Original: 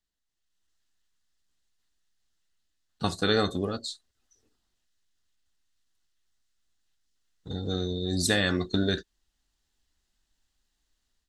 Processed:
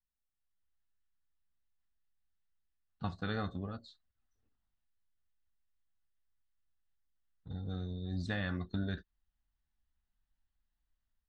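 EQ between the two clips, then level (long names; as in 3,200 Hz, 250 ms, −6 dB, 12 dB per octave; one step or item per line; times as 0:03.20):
head-to-tape spacing loss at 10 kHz 40 dB
parametric band 390 Hz −12.5 dB 1.2 octaves
−4.0 dB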